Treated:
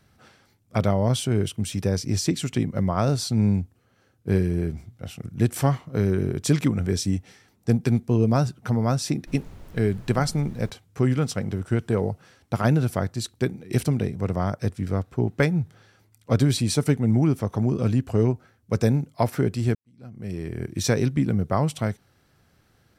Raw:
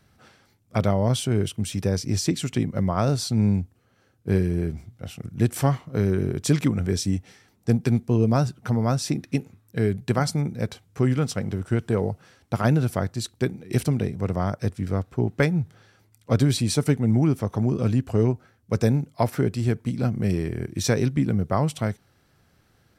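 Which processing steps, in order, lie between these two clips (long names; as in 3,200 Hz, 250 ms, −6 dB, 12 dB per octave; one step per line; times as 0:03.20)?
0:09.26–0:10.69: background noise brown −40 dBFS
0:19.75–0:20.66: fade in quadratic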